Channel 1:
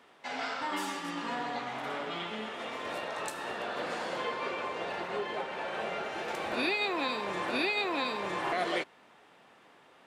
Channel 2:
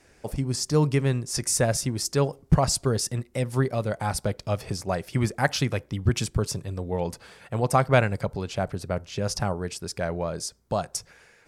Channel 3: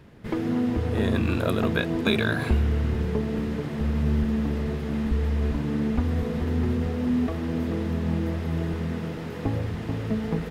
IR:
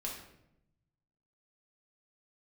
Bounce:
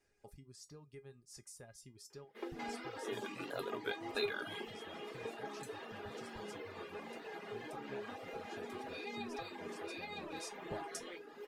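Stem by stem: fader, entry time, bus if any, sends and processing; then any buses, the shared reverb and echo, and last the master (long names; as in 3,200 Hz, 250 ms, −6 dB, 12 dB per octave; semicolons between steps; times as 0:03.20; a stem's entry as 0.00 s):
+1.5 dB, 2.35 s, no send, comb filter 6.2 ms; leveller curve on the samples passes 1; downward compressor, threshold −37 dBFS, peak gain reduction 13.5 dB
0:09.95 −10.5 dB → 0:10.61 −0.5 dB, 0.00 s, send −22 dB, downward compressor 4 to 1, threshold −32 dBFS, peak gain reduction 16.5 dB
−3.0 dB, 2.10 s, no send, high-pass filter 300 Hz 24 dB per octave; tape wow and flutter 99 cents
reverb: on, RT60 0.80 s, pre-delay 5 ms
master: reverb reduction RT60 0.85 s; tuned comb filter 410 Hz, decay 0.16 s, harmonics all, mix 80%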